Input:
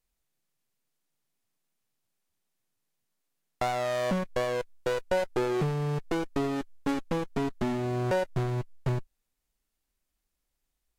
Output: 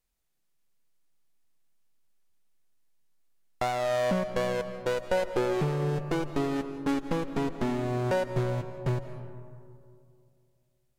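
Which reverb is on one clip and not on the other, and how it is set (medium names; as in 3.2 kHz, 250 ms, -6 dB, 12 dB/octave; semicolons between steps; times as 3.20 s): algorithmic reverb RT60 2.5 s, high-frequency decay 0.35×, pre-delay 120 ms, DRR 9.5 dB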